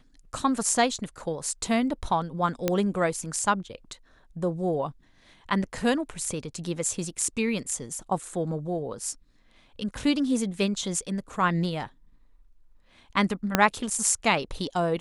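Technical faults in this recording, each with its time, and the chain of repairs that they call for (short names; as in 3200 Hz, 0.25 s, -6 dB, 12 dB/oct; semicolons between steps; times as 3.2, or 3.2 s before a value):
2.68 pop -9 dBFS
13.55 pop -4 dBFS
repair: de-click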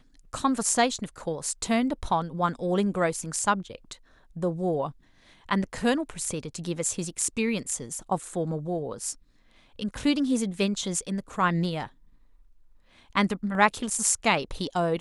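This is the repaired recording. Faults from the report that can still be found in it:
13.55 pop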